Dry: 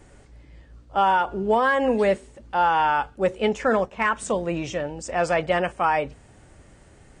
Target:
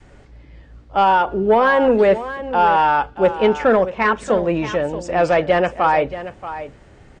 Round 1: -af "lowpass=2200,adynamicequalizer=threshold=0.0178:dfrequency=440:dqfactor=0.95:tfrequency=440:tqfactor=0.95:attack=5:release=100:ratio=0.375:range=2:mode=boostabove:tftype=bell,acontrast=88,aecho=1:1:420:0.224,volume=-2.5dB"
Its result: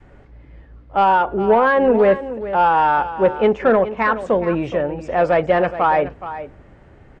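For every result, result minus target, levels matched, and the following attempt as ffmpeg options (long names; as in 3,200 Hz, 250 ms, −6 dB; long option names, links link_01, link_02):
echo 210 ms early; 4,000 Hz band −4.5 dB
-af "lowpass=2200,adynamicequalizer=threshold=0.0178:dfrequency=440:dqfactor=0.95:tfrequency=440:tqfactor=0.95:attack=5:release=100:ratio=0.375:range=2:mode=boostabove:tftype=bell,acontrast=88,aecho=1:1:630:0.224,volume=-2.5dB"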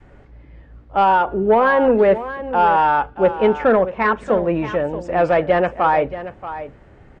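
4,000 Hz band −4.5 dB
-af "lowpass=4700,adynamicequalizer=threshold=0.0178:dfrequency=440:dqfactor=0.95:tfrequency=440:tqfactor=0.95:attack=5:release=100:ratio=0.375:range=2:mode=boostabove:tftype=bell,acontrast=88,aecho=1:1:630:0.224,volume=-2.5dB"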